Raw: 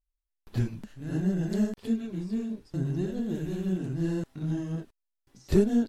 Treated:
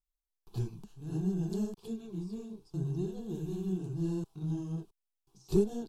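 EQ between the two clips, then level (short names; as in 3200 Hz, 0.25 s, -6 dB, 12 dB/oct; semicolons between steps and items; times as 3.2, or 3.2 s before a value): bell 1400 Hz -6.5 dB 0.23 oct; fixed phaser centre 380 Hz, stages 8; -3.5 dB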